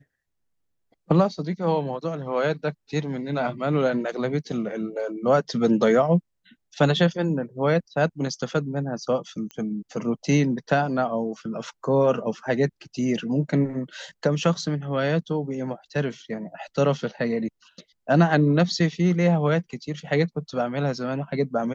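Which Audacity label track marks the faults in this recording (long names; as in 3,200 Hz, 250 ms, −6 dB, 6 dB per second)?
9.510000	9.510000	click −22 dBFS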